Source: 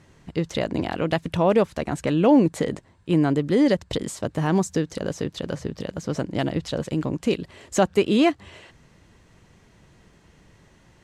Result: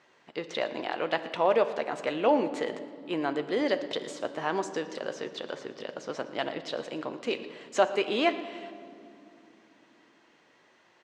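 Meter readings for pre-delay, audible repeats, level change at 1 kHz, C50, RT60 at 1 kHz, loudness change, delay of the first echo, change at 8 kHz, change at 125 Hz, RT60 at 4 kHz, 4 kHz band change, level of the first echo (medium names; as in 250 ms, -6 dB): 8 ms, 1, -2.0 dB, 11.5 dB, 2.4 s, -7.0 dB, 116 ms, -10.5 dB, -22.0 dB, 1.7 s, -2.5 dB, -18.5 dB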